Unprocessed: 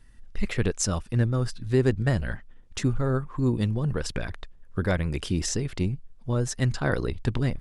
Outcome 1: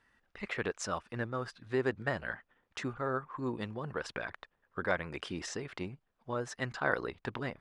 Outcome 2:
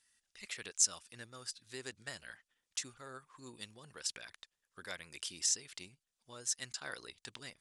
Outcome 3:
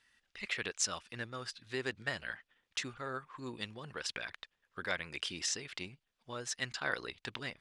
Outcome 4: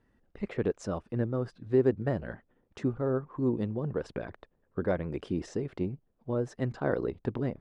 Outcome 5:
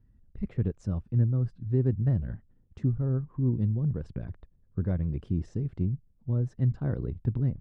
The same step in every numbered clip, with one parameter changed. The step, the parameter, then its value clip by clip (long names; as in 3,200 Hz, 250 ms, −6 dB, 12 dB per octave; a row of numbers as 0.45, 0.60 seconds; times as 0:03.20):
resonant band-pass, frequency: 1,200, 7,800, 3,000, 460, 120 Hertz